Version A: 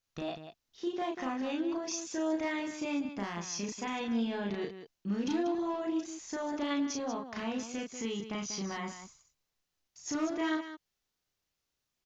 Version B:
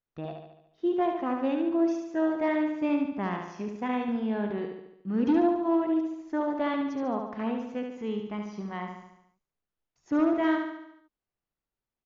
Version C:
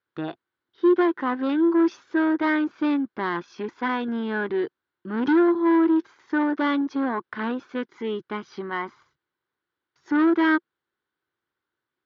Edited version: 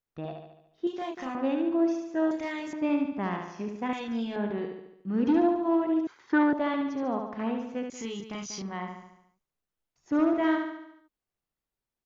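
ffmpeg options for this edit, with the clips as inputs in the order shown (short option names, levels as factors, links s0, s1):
-filter_complex "[0:a]asplit=4[s0][s1][s2][s3];[1:a]asplit=6[s4][s5][s6][s7][s8][s9];[s4]atrim=end=0.872[s10];[s0]atrim=start=0.868:end=1.352[s11];[s5]atrim=start=1.348:end=2.312[s12];[s1]atrim=start=2.308:end=2.732[s13];[s6]atrim=start=2.728:end=3.932[s14];[s2]atrim=start=3.928:end=4.362[s15];[s7]atrim=start=4.358:end=6.072[s16];[2:a]atrim=start=6.068:end=6.532[s17];[s8]atrim=start=6.528:end=7.902[s18];[s3]atrim=start=7.898:end=8.622[s19];[s9]atrim=start=8.618[s20];[s10][s11]acrossfade=d=0.004:c1=hsin:c2=hsin[s21];[s21][s12]acrossfade=d=0.004:c1=hsin:c2=hsin[s22];[s22][s13]acrossfade=d=0.004:c1=hsin:c2=hsin[s23];[s23][s14]acrossfade=d=0.004:c1=hsin:c2=hsin[s24];[s24][s15]acrossfade=d=0.004:c1=hsin:c2=hsin[s25];[s25][s16]acrossfade=d=0.004:c1=hsin:c2=hsin[s26];[s26][s17]acrossfade=d=0.004:c1=hsin:c2=hsin[s27];[s27][s18]acrossfade=d=0.004:c1=hsin:c2=hsin[s28];[s28][s19]acrossfade=d=0.004:c1=hsin:c2=hsin[s29];[s29][s20]acrossfade=d=0.004:c1=hsin:c2=hsin"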